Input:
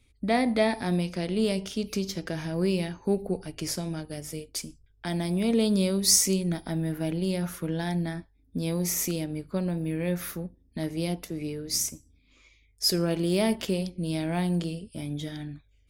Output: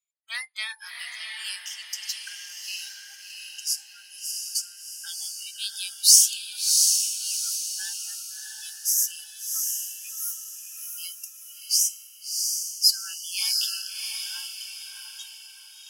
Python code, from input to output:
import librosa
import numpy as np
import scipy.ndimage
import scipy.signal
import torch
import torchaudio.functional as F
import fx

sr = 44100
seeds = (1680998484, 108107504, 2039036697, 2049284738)

p1 = scipy.signal.sosfilt(scipy.signal.bessel(8, 2300.0, 'highpass', norm='mag', fs=sr, output='sos'), x)
p2 = fx.noise_reduce_blind(p1, sr, reduce_db=30)
p3 = p2 + fx.echo_diffused(p2, sr, ms=694, feedback_pct=42, wet_db=-3.0, dry=0)
y = p3 * librosa.db_to_amplitude(7.0)